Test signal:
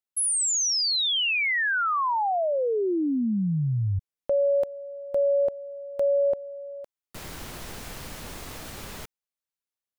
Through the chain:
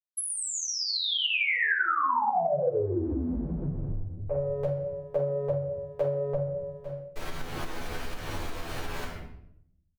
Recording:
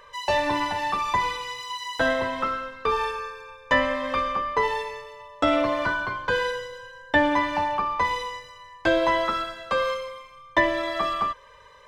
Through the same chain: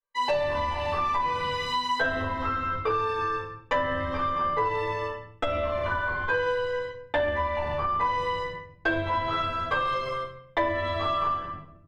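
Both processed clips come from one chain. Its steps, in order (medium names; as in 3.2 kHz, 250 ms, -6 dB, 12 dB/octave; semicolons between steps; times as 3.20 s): octave divider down 2 oct, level +3 dB; gate -38 dBFS, range -52 dB; treble shelf 8.9 kHz -3.5 dB; doubling 12 ms -2.5 dB; simulated room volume 140 m³, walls mixed, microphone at 3.8 m; compression 8:1, threshold -18 dBFS; tone controls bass -7 dB, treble -7 dB; trim -5 dB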